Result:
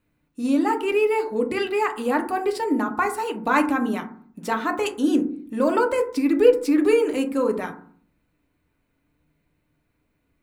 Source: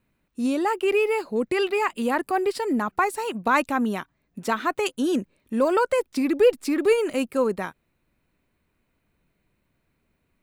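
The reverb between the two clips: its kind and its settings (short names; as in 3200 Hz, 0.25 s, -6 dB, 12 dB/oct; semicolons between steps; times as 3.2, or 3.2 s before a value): FDN reverb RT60 0.51 s, low-frequency decay 1.55×, high-frequency decay 0.35×, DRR 3.5 dB; gain -1.5 dB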